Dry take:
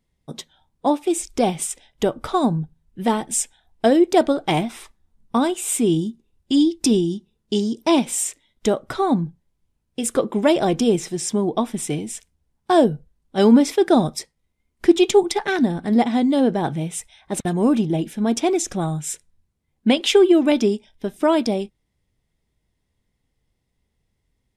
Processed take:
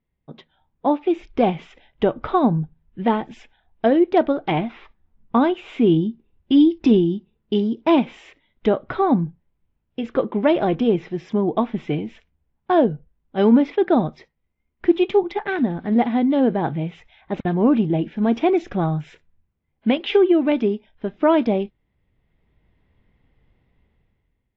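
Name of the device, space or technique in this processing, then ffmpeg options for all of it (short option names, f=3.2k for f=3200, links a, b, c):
action camera in a waterproof case: -af "lowpass=f=2.9k:w=0.5412,lowpass=f=2.9k:w=1.3066,dynaudnorm=f=170:g=9:m=16dB,volume=-5dB" -ar 16000 -c:a aac -b:a 48k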